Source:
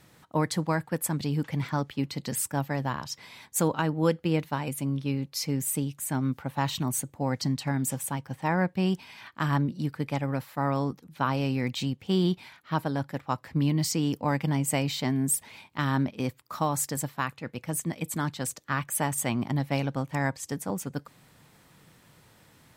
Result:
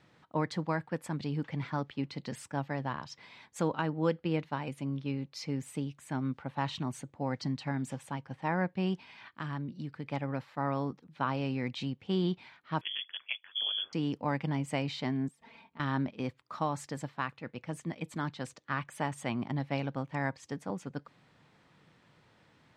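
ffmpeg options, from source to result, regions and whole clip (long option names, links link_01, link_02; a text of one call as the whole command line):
ffmpeg -i in.wav -filter_complex "[0:a]asettb=1/sr,asplit=3[link_01][link_02][link_03];[link_01]atrim=end=9.284[link_04];[link_02]atrim=start=9.28:end=10.08,asetpts=PTS-STARTPTS,afade=type=in:duration=0.004:curve=qsin,afade=type=out:start_time=0.796:duration=0.004:curve=qsin,equalizer=frequency=730:width_type=o:width=2.3:gain=-4,acompressor=threshold=-30dB:ratio=2:attack=3.2:release=140:knee=1:detection=peak[link_05];[link_03]atrim=start=10.076[link_06];[link_04][link_05]acrossfade=duration=0.004:curve1=hsin:curve2=qsin[link_07];[link_07][link_06]acrossfade=duration=0.004:curve1=qsin:curve2=hsin,asettb=1/sr,asplit=3[link_08][link_09][link_10];[link_08]atrim=end=12.814[link_11];[link_09]atrim=start=12.81:end=13.93,asetpts=PTS-STARTPTS,afade=type=in:duration=0.004:curve=qsin,afade=type=out:start_time=1.116:duration=0.004:curve=qsin,aeval=exprs='val(0)*sin(2*PI*50*n/s)':channel_layout=same,lowpass=frequency=3000:width_type=q:width=0.5098,lowpass=frequency=3000:width_type=q:width=0.6013,lowpass=frequency=3000:width_type=q:width=0.9,lowpass=frequency=3000:width_type=q:width=2.563,afreqshift=-3500[link_12];[link_10]atrim=start=13.926[link_13];[link_11][link_12]acrossfade=duration=0.004:curve1=hsin:curve2=qsin[link_14];[link_14][link_13]acrossfade=duration=0.004:curve1=qsin:curve2=hsin,asettb=1/sr,asplit=3[link_15][link_16][link_17];[link_15]atrim=end=15.284[link_18];[link_16]atrim=start=15.28:end=15.8,asetpts=PTS-STARTPTS,afade=type=in:duration=0.004:curve=qsin,afade=type=out:start_time=0.516:duration=0.004:curve=qsin,highshelf=frequency=2000:gain=-10,aecho=1:1:4.4:0.79,atrim=end_sample=22932,acompressor=threshold=-44dB:ratio=6:attack=3.2:release=140:knee=1:detection=peak[link_19];[link_17]atrim=start=15.796[link_20];[link_18][link_19]acrossfade=duration=0.004:curve1=hsin:curve2=qsin[link_21];[link_21][link_20]acrossfade=duration=0.004:curve1=qsin:curve2=hsin,lowpass=4000,lowshelf=frequency=69:gain=-10,volume=-4.5dB" out.wav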